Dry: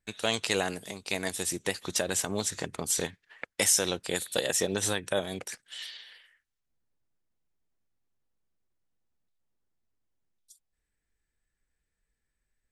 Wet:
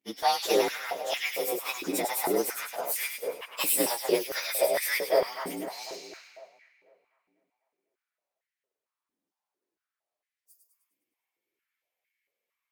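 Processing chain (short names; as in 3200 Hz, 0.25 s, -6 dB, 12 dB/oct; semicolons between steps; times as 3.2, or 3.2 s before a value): inharmonic rescaling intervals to 113%; split-band echo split 2100 Hz, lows 0.249 s, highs 0.102 s, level -5.5 dB; stepped high-pass 4.4 Hz 280–1900 Hz; gain +2 dB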